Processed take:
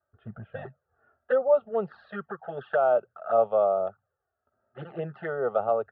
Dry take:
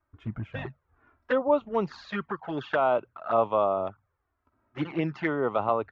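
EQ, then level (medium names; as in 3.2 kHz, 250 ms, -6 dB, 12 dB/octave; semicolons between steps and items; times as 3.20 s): band-pass 310–2400 Hz; tilt EQ -3.5 dB/octave; static phaser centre 1.5 kHz, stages 8; +1.0 dB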